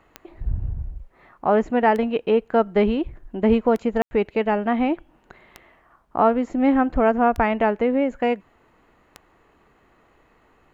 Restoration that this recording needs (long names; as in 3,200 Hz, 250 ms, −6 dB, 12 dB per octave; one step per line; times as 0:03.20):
click removal
ambience match 0:04.02–0:04.11